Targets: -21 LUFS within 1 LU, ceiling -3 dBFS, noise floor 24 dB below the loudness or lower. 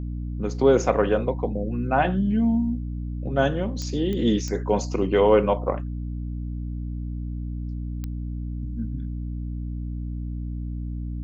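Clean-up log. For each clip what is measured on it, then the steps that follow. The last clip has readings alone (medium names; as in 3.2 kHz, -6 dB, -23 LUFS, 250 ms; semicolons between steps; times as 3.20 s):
clicks found 4; hum 60 Hz; highest harmonic 300 Hz; hum level -28 dBFS; loudness -25.5 LUFS; peak level -6.5 dBFS; loudness target -21.0 LUFS
-> de-click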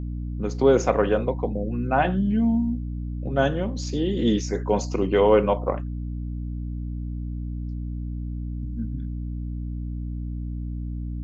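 clicks found 0; hum 60 Hz; highest harmonic 300 Hz; hum level -28 dBFS
-> hum notches 60/120/180/240/300 Hz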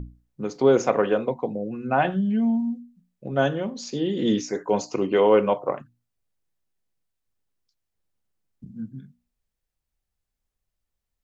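hum not found; loudness -23.5 LUFS; peak level -6.5 dBFS; loudness target -21.0 LUFS
-> trim +2.5 dB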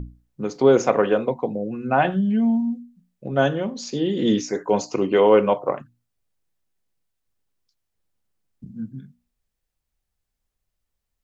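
loudness -21.0 LUFS; peak level -4.0 dBFS; noise floor -80 dBFS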